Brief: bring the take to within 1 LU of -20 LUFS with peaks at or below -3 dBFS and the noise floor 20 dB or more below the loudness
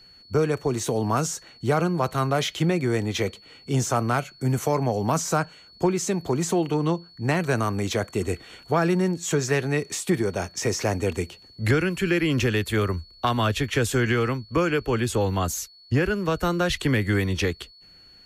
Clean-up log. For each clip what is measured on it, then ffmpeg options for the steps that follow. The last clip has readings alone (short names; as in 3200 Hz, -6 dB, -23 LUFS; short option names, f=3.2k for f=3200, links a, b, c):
steady tone 4400 Hz; tone level -49 dBFS; loudness -25.0 LUFS; peak -10.5 dBFS; loudness target -20.0 LUFS
-> -af "bandreject=f=4.4k:w=30"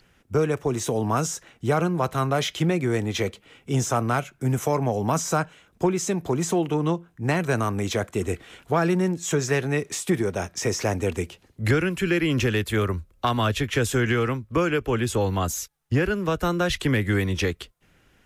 steady tone none; loudness -25.0 LUFS; peak -10.5 dBFS; loudness target -20.0 LUFS
-> -af "volume=5dB"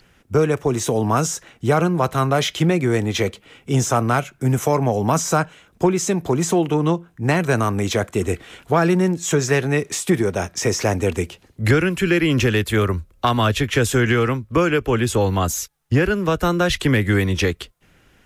loudness -20.0 LUFS; peak -5.5 dBFS; noise floor -56 dBFS